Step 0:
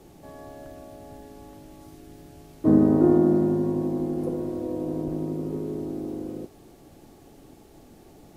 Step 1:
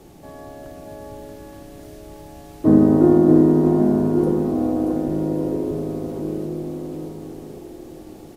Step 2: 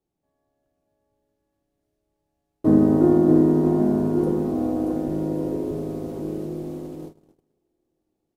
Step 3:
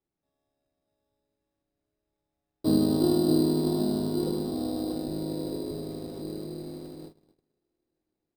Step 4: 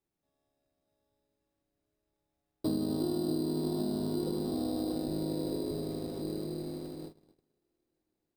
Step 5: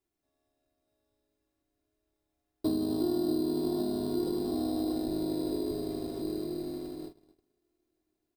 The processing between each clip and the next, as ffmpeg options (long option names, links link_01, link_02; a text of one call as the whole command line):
ffmpeg -i in.wav -af "aecho=1:1:630|1134|1537|1860|2118:0.631|0.398|0.251|0.158|0.1,volume=4.5dB" out.wav
ffmpeg -i in.wav -af "agate=range=-34dB:threshold=-30dB:ratio=16:detection=peak,volume=-3dB" out.wav
ffmpeg -i in.wav -af "acrusher=samples=10:mix=1:aa=0.000001,volume=-7dB" out.wav
ffmpeg -i in.wav -af "acompressor=threshold=-29dB:ratio=6" out.wav
ffmpeg -i in.wav -af "aecho=1:1:2.9:0.52" out.wav